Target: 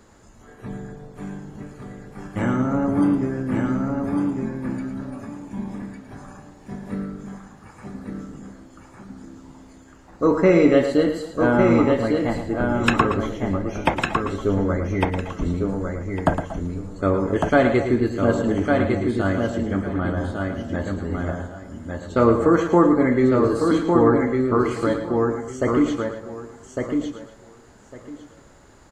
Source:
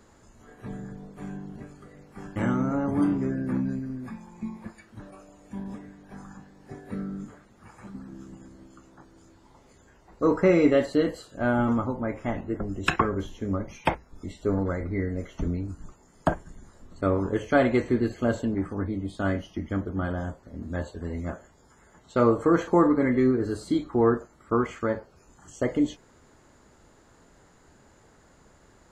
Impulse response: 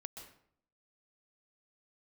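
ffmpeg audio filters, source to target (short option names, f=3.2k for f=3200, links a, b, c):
-filter_complex "[0:a]aecho=1:1:1154|2308|3462:0.631|0.114|0.0204,asplit=2[a][b];[1:a]atrim=start_sample=2205,afade=t=out:st=0.19:d=0.01,atrim=end_sample=8820,adelay=111[c];[b][c]afir=irnorm=-1:irlink=0,volume=-3.5dB[d];[a][d]amix=inputs=2:normalize=0,volume=4dB"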